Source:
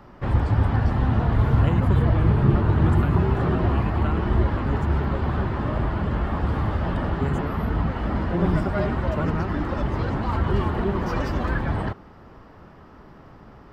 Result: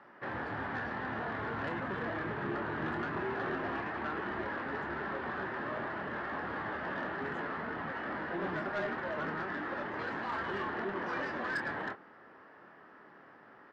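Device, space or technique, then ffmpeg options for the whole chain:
intercom: -filter_complex "[0:a]asettb=1/sr,asplit=3[a][b][c];[a]atrim=end=9.994[d];[b]atrim=start=9.99:end=10.62,asetpts=PTS-STARTPTS,afade=t=in:d=0.004:c=qsin,afade=t=out:st=0.626:d=0.004:c=qsin,aemphasis=mode=production:type=50fm[e];[c]atrim=start=10.616[f];[d][e]acrossfade=d=0.004:c1=hsin:c2=qsin[g];[g][f]acrossfade=d=0.004:c1=qsin:c2=hsin,highpass=310,lowpass=3.7k,equalizer=f=1.7k:t=o:w=0.51:g=10.5,asoftclip=type=tanh:threshold=-20.5dB,asplit=2[h][i];[i]adelay=26,volume=-7.5dB[j];[h][j]amix=inputs=2:normalize=0,volume=-8.5dB"

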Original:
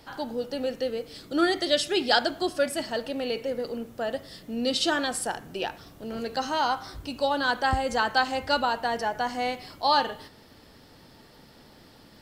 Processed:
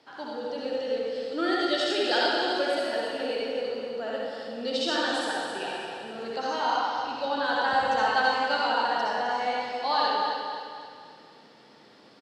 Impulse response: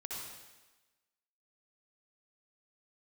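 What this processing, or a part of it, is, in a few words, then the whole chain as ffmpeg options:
supermarket ceiling speaker: -filter_complex "[0:a]highpass=250,lowpass=5.4k[a];[1:a]atrim=start_sample=2205[b];[a][b]afir=irnorm=-1:irlink=0,asettb=1/sr,asplit=3[c][d][e];[c]atrim=end=6.774[f];[d]atrim=start=6.77:end=7.44,asetpts=PTS-STARTPTS,afade=t=in:d=0.004:c=qsin,afade=t=out:st=0.666:d=0.004:c=qsin,lowpass=6.2k[g];[e]atrim=start=7.436[h];[f][g]acrossfade=d=0.004:c1=hsin:c2=qsin[i];[i][h]acrossfade=d=0.004:c1=qsin:c2=hsin,aecho=1:1:261|522|783|1044|1305:0.447|0.201|0.0905|0.0407|0.0183"

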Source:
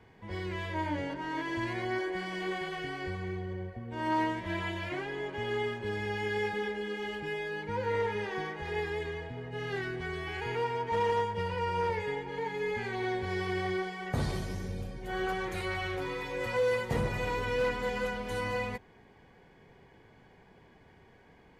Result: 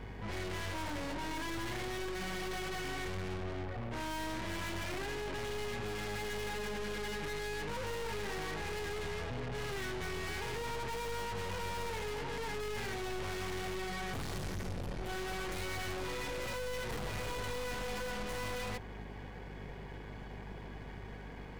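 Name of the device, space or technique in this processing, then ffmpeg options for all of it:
valve amplifier with mains hum: -af "aeval=exprs='(tanh(355*val(0)+0.55)-tanh(0.55))/355':c=same,aeval=exprs='val(0)+0.00112*(sin(2*PI*50*n/s)+sin(2*PI*2*50*n/s)/2+sin(2*PI*3*50*n/s)/3+sin(2*PI*4*50*n/s)/4+sin(2*PI*5*50*n/s)/5)':c=same,volume=12dB"

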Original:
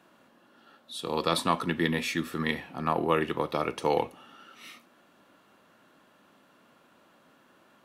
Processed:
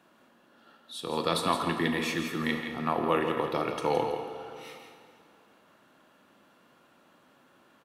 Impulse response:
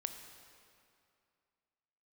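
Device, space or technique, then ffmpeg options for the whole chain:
cave: -filter_complex "[0:a]aecho=1:1:166:0.376[a];[1:a]atrim=start_sample=2205[b];[a][b]afir=irnorm=-1:irlink=0"

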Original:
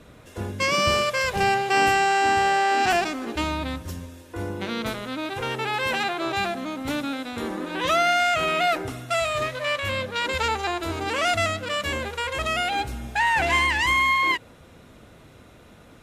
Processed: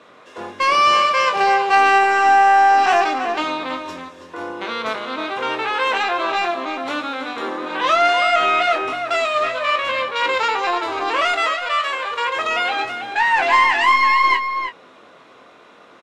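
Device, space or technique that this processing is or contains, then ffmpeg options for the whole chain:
intercom: -filter_complex "[0:a]asettb=1/sr,asplit=3[a][b][c];[a]atrim=end=11.224[d];[b]atrim=start=11.22:end=12.11,asetpts=PTS-STARTPTS,afade=t=in:d=0.004:c=qsin,afade=t=out:st=0.886:d=0.004:c=qsin,highpass=630[e];[c]atrim=start=12.106[f];[d][e]acrossfade=d=0.004:c1=hsin:c2=qsin[g];[g][f]acrossfade=d=0.004:c1=qsin:c2=hsin,highpass=410,lowpass=4.8k,equalizer=f=1.1k:t=o:w=0.29:g=8,asoftclip=type=tanh:threshold=-12.5dB,asplit=2[h][i];[i]adelay=23,volume=-7dB[j];[h][j]amix=inputs=2:normalize=0,asplit=2[k][l];[l]adelay=326.5,volume=-7dB,highshelf=f=4k:g=-7.35[m];[k][m]amix=inputs=2:normalize=0,volume=4.5dB"

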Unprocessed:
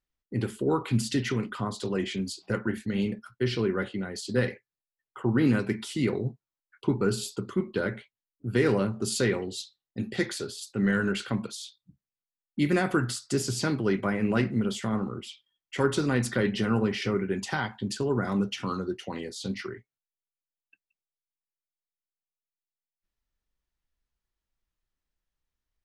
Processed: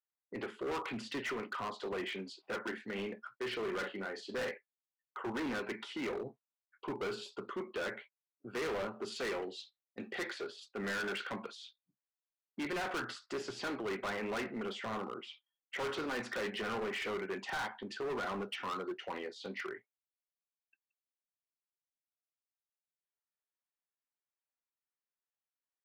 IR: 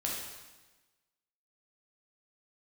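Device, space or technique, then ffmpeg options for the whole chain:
walkie-talkie: -filter_complex "[0:a]asettb=1/sr,asplit=3[a][b][c];[a]atrim=end=3.584[d];[b]atrim=start=3.58:end=4.51,asetpts=PTS-STARTPTS,afade=t=in:d=0.004:c=qsin,afade=t=out:st=0.926:d=0.004:c=qsin,asplit=2[e][f];[f]adelay=41,volume=-9dB[g];[e][g]amix=inputs=2:normalize=0,atrim=end_sample=41013[h];[c]atrim=start=4.506[i];[d][h]acrossfade=d=0.004:c1=hsin:c2=qsin[j];[j][i]acrossfade=d=0.004:c1=qsin:c2=hsin,highpass=510,lowpass=2.3k,asoftclip=type=hard:threshold=-35.5dB,agate=range=-9dB:threshold=-56dB:ratio=16:detection=peak,volume=1dB"

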